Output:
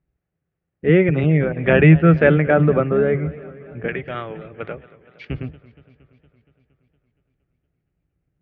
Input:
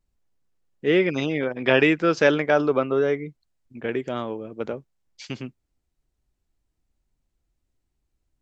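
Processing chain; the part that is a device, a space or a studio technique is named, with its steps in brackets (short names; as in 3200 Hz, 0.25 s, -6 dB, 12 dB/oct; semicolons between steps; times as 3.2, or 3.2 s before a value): sub-octave bass pedal (octaver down 1 oct, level 0 dB; speaker cabinet 60–2300 Hz, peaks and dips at 160 Hz +10 dB, 220 Hz -8 dB, 980 Hz -9 dB); 3.88–5.25 tilt shelf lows -9.5 dB; warbling echo 0.233 s, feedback 66%, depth 122 cents, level -19.5 dB; gain +4 dB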